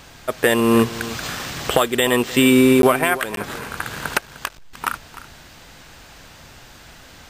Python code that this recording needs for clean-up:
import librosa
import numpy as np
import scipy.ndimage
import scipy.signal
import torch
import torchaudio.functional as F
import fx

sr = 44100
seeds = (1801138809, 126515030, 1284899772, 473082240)

y = fx.fix_interpolate(x, sr, at_s=(2.82, 3.36), length_ms=12.0)
y = fx.fix_echo_inverse(y, sr, delay_ms=303, level_db=-16.0)